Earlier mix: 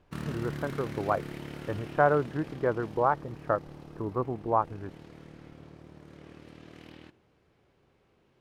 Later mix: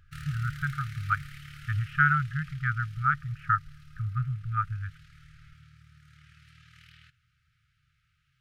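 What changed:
speech +9.0 dB; master: add brick-wall FIR band-stop 160–1200 Hz

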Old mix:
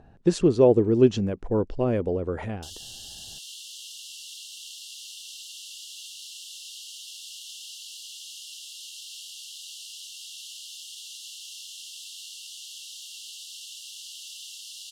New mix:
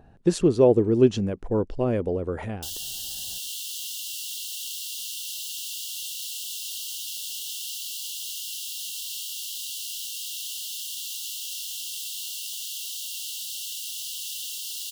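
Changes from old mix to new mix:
background +5.0 dB; master: remove LPF 8100 Hz 12 dB/oct

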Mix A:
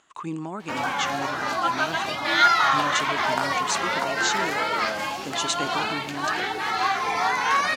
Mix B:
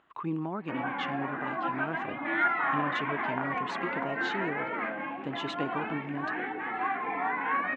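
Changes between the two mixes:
background: add speaker cabinet 240–2300 Hz, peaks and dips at 270 Hz +7 dB, 410 Hz -6 dB, 600 Hz -7 dB, 900 Hz -6 dB, 1300 Hz -8 dB; master: add air absorption 480 m

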